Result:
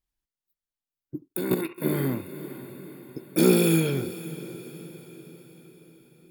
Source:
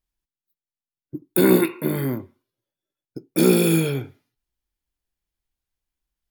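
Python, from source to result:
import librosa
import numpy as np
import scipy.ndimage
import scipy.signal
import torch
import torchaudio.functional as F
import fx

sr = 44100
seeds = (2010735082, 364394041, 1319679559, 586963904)

y = fx.echo_diffused(x, sr, ms=519, feedback_pct=52, wet_db=-15)
y = fx.level_steps(y, sr, step_db=13, at=(1.28, 1.78))
y = y * librosa.db_to_amplitude(-2.5)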